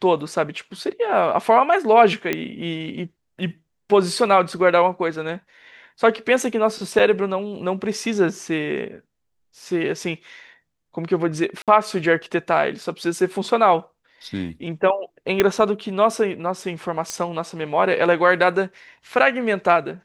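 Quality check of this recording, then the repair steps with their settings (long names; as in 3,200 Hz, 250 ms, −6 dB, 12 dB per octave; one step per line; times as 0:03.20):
0:02.33: click −8 dBFS
0:06.99–0:07.00: drop-out 5.9 ms
0:11.62–0:11.68: drop-out 57 ms
0:15.40: click −3 dBFS
0:17.10: click −12 dBFS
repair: click removal
repair the gap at 0:06.99, 5.9 ms
repair the gap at 0:11.62, 57 ms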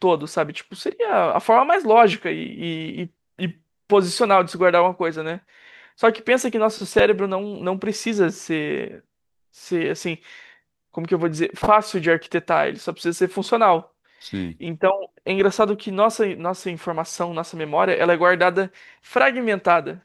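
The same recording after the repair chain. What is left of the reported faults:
0:15.40: click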